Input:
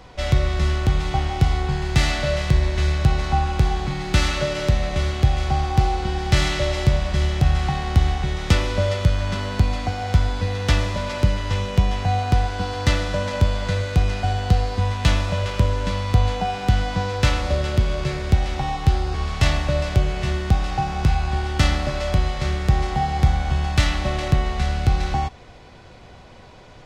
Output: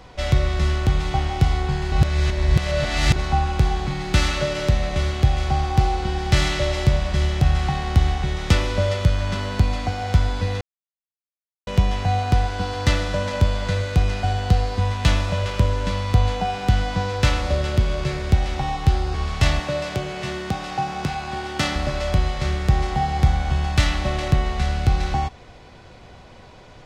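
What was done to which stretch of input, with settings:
0:01.92–0:03.16: reverse
0:10.61–0:11.67: silence
0:19.60–0:21.76: high-pass filter 170 Hz

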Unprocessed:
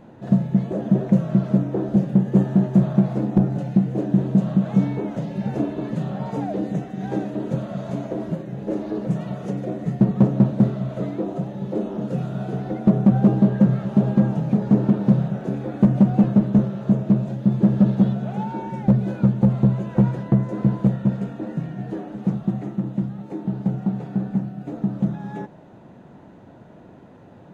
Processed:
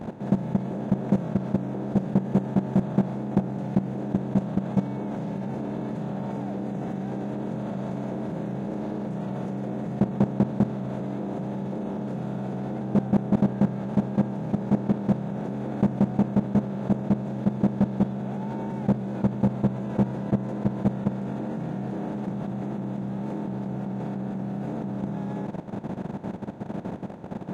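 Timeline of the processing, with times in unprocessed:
0:12.81–0:13.42: reverse
whole clip: compressor on every frequency bin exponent 0.4; low-shelf EQ 160 Hz −7 dB; output level in coarse steps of 13 dB; level −4.5 dB

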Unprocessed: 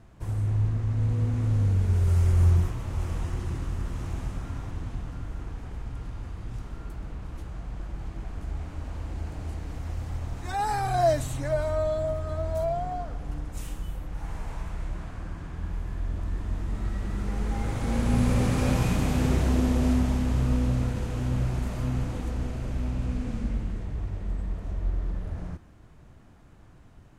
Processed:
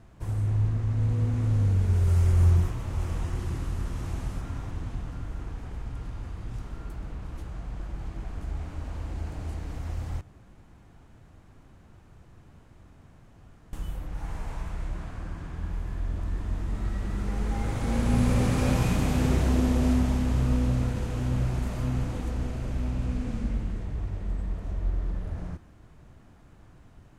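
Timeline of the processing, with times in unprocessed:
0:03.35–0:04.41: linear delta modulator 64 kbit/s, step −47 dBFS
0:10.21–0:13.73: fill with room tone

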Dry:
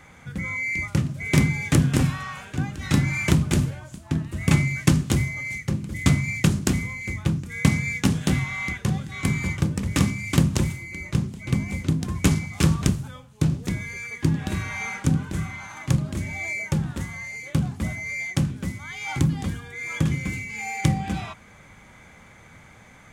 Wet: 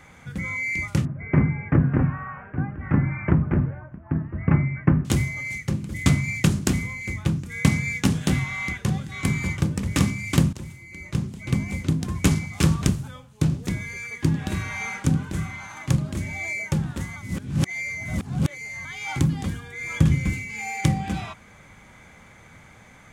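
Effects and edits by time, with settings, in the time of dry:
0:01.05–0:05.05: inverse Chebyshev low-pass filter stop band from 3,600 Hz
0:10.53–0:11.39: fade in, from −18.5 dB
0:17.16–0:18.85: reverse
0:19.80–0:20.34: low-shelf EQ 110 Hz +12 dB

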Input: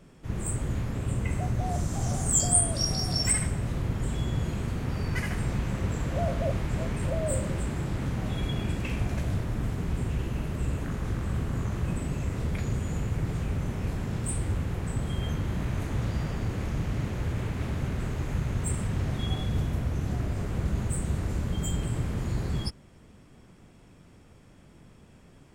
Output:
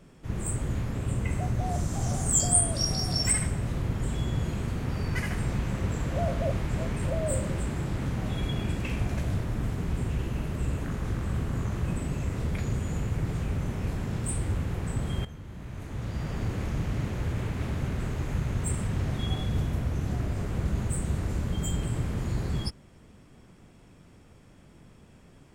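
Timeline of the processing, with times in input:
0:15.25–0:16.41: fade in quadratic, from −13.5 dB

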